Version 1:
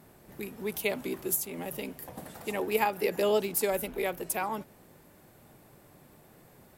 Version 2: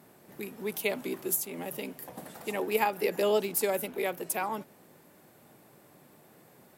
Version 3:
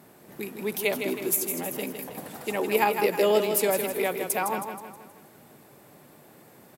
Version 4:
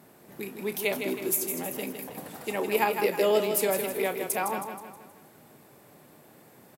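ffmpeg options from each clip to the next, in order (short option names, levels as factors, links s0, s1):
-af "highpass=150"
-af "aecho=1:1:159|318|477|636|795|954:0.447|0.21|0.0987|0.0464|0.0218|0.0102,volume=1.58"
-filter_complex "[0:a]asplit=2[s0][s1];[s1]adelay=31,volume=0.251[s2];[s0][s2]amix=inputs=2:normalize=0,volume=0.794"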